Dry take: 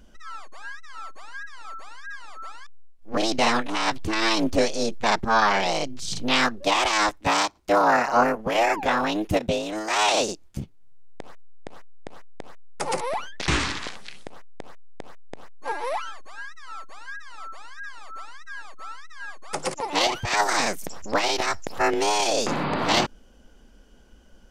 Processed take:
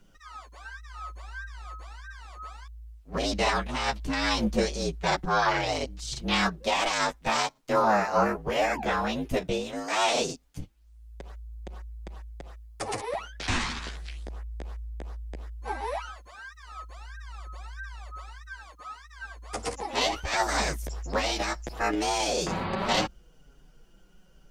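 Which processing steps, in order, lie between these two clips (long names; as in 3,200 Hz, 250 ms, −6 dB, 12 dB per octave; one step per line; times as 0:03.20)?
frequency shifter −56 Hz
bit-depth reduction 12 bits, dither none
multi-voice chorus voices 2, 0.17 Hz, delay 10 ms, depth 4.8 ms
level −1.5 dB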